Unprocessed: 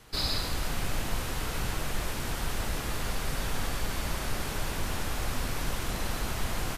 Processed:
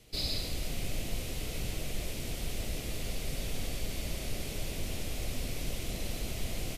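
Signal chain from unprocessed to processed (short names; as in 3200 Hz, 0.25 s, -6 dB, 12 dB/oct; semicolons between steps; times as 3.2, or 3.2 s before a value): band shelf 1200 Hz -13 dB 1.3 oct; gain -3.5 dB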